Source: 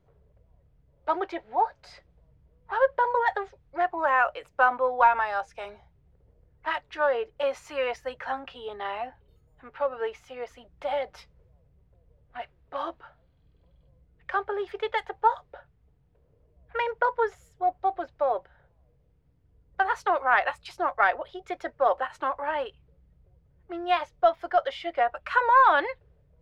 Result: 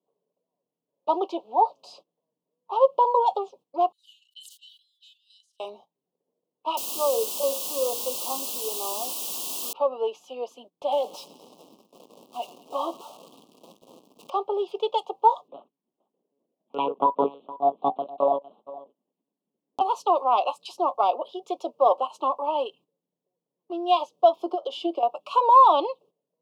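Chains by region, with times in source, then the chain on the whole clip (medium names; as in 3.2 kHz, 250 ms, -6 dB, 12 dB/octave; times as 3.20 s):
3.92–5.60 s: rippled Chebyshev high-pass 2.9 kHz, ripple 6 dB + decay stretcher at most 30 dB/s
6.77–9.73 s: rippled Chebyshev low-pass 1.7 kHz, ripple 6 dB + hum notches 60/120/180/240/300/360/420/480/540 Hz + word length cut 6-bit, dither triangular
10.92–14.30 s: jump at every zero crossing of -43.5 dBFS + thinning echo 102 ms, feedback 84%, high-pass 830 Hz, level -19 dB
15.48–19.81 s: delay 463 ms -18 dB + monotone LPC vocoder at 8 kHz 140 Hz
24.35–25.03 s: compression 8:1, threshold -30 dBFS + peaking EQ 350 Hz +12.5 dB 0.51 oct
whole clip: steep high-pass 210 Hz 36 dB/octave; gate -54 dBFS, range -15 dB; elliptic band-stop 1.1–2.8 kHz, stop band 60 dB; trim +4.5 dB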